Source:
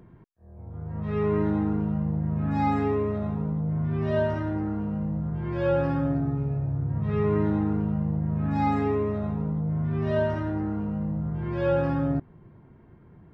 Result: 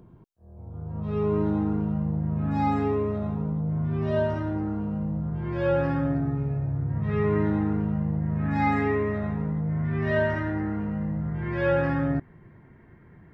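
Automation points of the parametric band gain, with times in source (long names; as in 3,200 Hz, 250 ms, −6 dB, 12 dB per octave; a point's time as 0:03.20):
parametric band 1,900 Hz 0.56 octaves
0:01.34 −11.5 dB
0:01.77 −2.5 dB
0:05.18 −2.5 dB
0:05.89 +6 dB
0:08.12 +6 dB
0:08.65 +12.5 dB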